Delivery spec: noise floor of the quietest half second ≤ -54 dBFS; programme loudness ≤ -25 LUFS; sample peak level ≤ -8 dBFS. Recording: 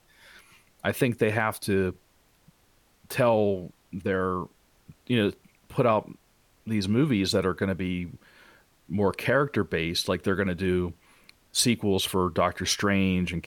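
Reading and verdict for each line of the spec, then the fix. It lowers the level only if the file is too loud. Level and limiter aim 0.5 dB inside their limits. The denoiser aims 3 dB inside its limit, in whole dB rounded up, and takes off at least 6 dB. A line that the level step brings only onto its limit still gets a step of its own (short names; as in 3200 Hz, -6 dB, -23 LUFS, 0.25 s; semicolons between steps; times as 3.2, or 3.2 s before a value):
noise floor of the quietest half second -63 dBFS: OK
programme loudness -26.5 LUFS: OK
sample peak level -11.0 dBFS: OK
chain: none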